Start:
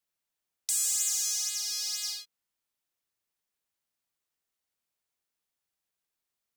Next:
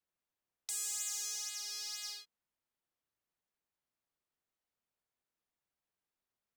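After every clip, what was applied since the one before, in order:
high-shelf EQ 2,600 Hz −11.5 dB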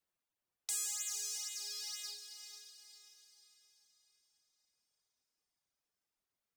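reverb reduction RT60 1.8 s
feedback delay with all-pass diffusion 486 ms, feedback 43%, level −8 dB
level +2 dB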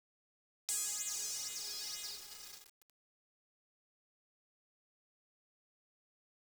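bit-depth reduction 8 bits, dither none

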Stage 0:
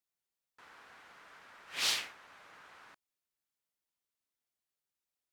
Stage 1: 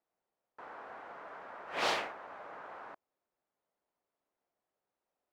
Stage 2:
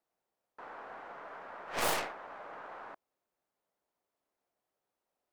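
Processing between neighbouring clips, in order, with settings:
drawn EQ curve 100 Hz 0 dB, 660 Hz +14 dB, 3,500 Hz −8 dB, 12,000 Hz −17 dB; level +2.5 dB
stylus tracing distortion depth 0.29 ms; level +1 dB

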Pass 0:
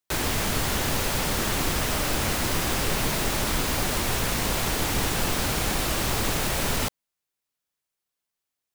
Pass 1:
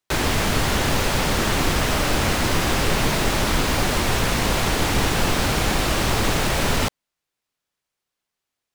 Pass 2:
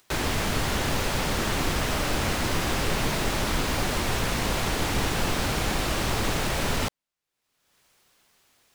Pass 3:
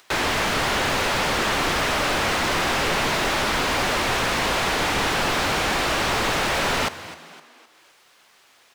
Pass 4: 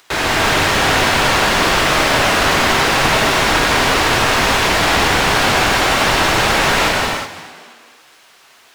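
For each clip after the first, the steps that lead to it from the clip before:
high-shelf EQ 8,300 Hz −10.5 dB; level +6 dB
upward compression, threshold −38 dBFS; level −5.5 dB
mid-hump overdrive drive 18 dB, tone 3,200 Hz, clips at −12.5 dBFS; echo with shifted repeats 257 ms, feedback 45%, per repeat +76 Hz, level −15.5 dB
reverb whose tail is shaped and stops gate 400 ms flat, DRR −4 dB; level +3 dB

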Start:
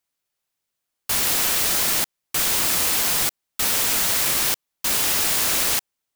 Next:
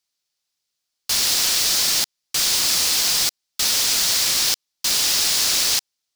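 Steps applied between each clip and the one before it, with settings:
parametric band 4,900 Hz +13.5 dB 1.4 octaves
level −4.5 dB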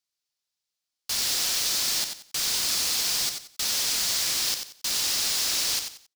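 repeating echo 91 ms, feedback 27%, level −7 dB
level −7.5 dB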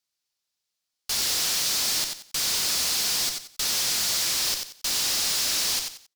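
tube saturation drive 23 dB, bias 0.4
level +4 dB

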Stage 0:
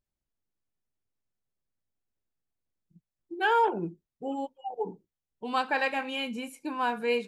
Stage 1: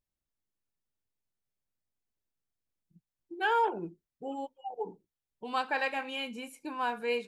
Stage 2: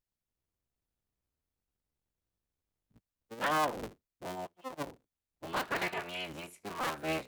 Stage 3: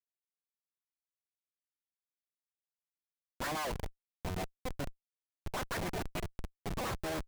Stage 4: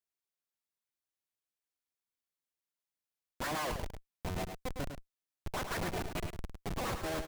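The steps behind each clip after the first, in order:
dynamic equaliser 170 Hz, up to −5 dB, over −46 dBFS, Q 0.86; level −3 dB
sub-harmonics by changed cycles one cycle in 3, inverted; level −3 dB
auto-filter low-pass sine 7 Hz 600–2,300 Hz; tape wow and flutter 26 cents; comparator with hysteresis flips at −33.5 dBFS; level +1 dB
single-tap delay 105 ms −7.5 dB

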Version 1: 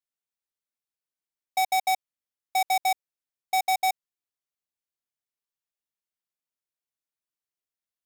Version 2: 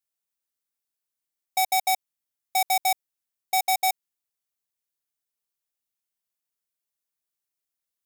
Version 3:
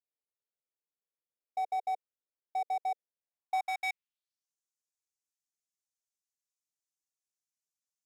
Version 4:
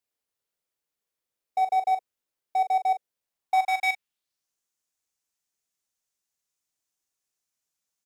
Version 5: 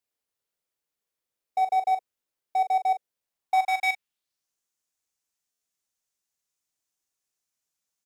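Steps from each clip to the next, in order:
high-shelf EQ 6,300 Hz +8.5 dB
band-pass filter sweep 480 Hz → 6,500 Hz, 0:03.15–0:04.50
double-tracking delay 41 ms −10 dB; level +8 dB
buffer that repeats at 0:05.51, times 8

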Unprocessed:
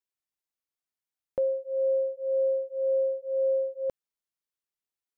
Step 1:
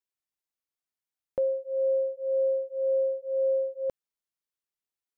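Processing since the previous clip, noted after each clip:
no processing that can be heard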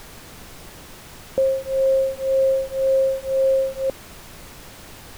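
parametric band 220 Hz +9.5 dB 1.9 octaves
background noise pink −45 dBFS
level +4 dB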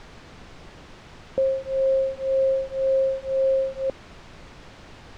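high-frequency loss of the air 130 metres
level −2.5 dB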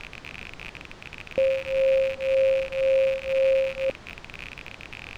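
loose part that buzzes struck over −46 dBFS, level −23 dBFS

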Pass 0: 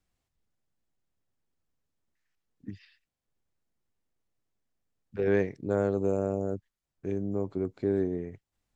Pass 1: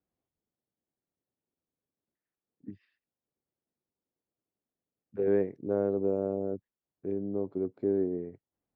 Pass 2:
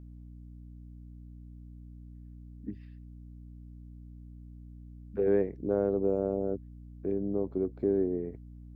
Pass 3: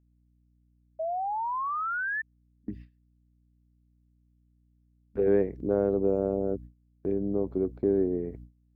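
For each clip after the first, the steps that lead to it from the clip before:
resonant band-pass 370 Hz, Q 0.8
in parallel at 0 dB: downward compressor, threshold −36 dBFS, peak gain reduction 14 dB; on the sum: mains hum 60 Hz, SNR 13 dB; level −1.5 dB
noise gate with hold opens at −36 dBFS; sound drawn into the spectrogram rise, 0:00.99–0:02.22, 630–1,800 Hz −33 dBFS; level +2.5 dB

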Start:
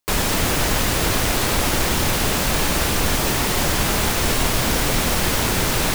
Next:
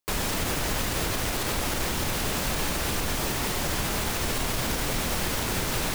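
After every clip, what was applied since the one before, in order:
brickwall limiter −11 dBFS, peak gain reduction 5.5 dB
level −6.5 dB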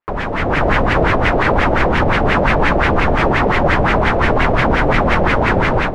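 automatic gain control gain up to 8 dB
auto-filter low-pass sine 5.7 Hz 580–2,200 Hz
level +6 dB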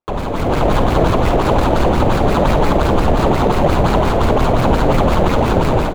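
running median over 25 samples
ambience of single reflections 51 ms −11.5 dB, 68 ms −15.5 dB
level +1.5 dB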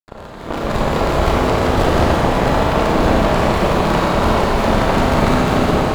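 harmonic generator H 6 −11 dB, 7 −16 dB, 8 −17 dB, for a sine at −1 dBFS
four-comb reverb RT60 3.6 s, combs from 28 ms, DRR −6 dB
level −8 dB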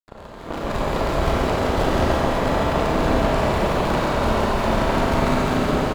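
single-tap delay 137 ms −6 dB
level −6 dB

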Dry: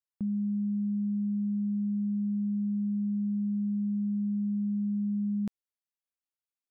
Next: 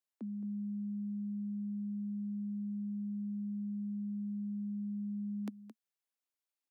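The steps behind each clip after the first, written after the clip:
Butterworth high-pass 220 Hz 96 dB per octave
single-tap delay 219 ms −12.5 dB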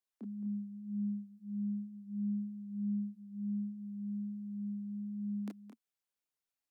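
multi-voice chorus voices 6, 0.32 Hz, delay 28 ms, depth 5 ms
level +2 dB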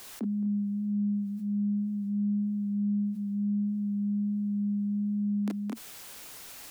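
envelope flattener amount 70%
level +6 dB

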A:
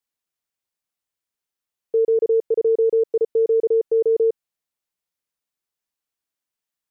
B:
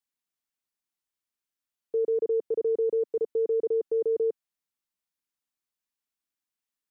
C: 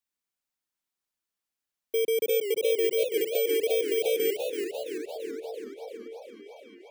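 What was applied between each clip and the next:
graphic EQ with 10 bands 125 Hz −5 dB, 250 Hz +4 dB, 500 Hz −5 dB; level −4 dB
samples in bit-reversed order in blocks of 16 samples; echo through a band-pass that steps 620 ms, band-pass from 220 Hz, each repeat 0.7 octaves, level −9.5 dB; feedback echo with a swinging delay time 338 ms, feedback 64%, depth 205 cents, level −6.5 dB

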